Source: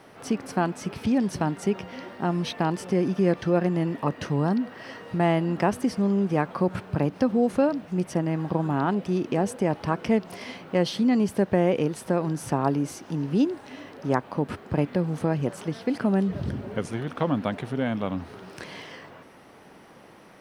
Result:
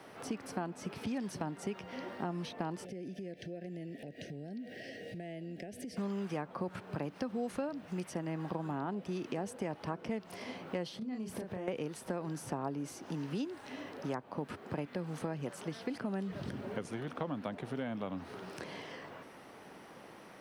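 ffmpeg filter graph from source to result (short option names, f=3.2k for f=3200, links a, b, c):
-filter_complex "[0:a]asettb=1/sr,asplit=3[a][b][c];[a]atrim=end=2.854[d];[b]atrim=start=2.85:end=5.97,asetpts=PTS-STARTPTS,afade=t=in:d=0.004:c=qsin,afade=t=out:st=3.116:d=0.004:c=qsin,acompressor=threshold=-37dB:ratio=6:attack=3.2:release=140:knee=1:detection=peak,asuperstop=centerf=1100:order=8:qfactor=1.1[e];[c]atrim=start=5.966[f];[d][e]acrossfade=d=0.004:c1=hsin:c2=qsin[g];[g][f]acrossfade=d=0.004:c1=qsin:c2=hsin,asettb=1/sr,asplit=3[h][i][j];[h]atrim=end=10.984[k];[i]atrim=start=10.98:end=11.68,asetpts=PTS-STARTPTS,afade=t=in:d=0.004:c=qsin,afade=t=out:st=0.696:d=0.004:c=qsin,lowshelf=f=140:g=8.5,acompressor=threshold=-31dB:ratio=12:attack=3.2:release=140:knee=1:detection=peak,asplit=2[l][m];[m]adelay=32,volume=-5dB[n];[l][n]amix=inputs=2:normalize=0,atrim=end_sample=30870[o];[j]atrim=start=11.676[p];[k][o]acrossfade=d=0.004:c1=hsin:c2=qsin[q];[q][p]acrossfade=d=0.004:c1=qsin:c2=hsin,acrossover=split=110|1000[r][s][t];[r]acompressor=threshold=-53dB:ratio=4[u];[s]acompressor=threshold=-34dB:ratio=4[v];[t]acompressor=threshold=-46dB:ratio=4[w];[u][v][w]amix=inputs=3:normalize=0,lowshelf=f=130:g=-6,volume=-2dB"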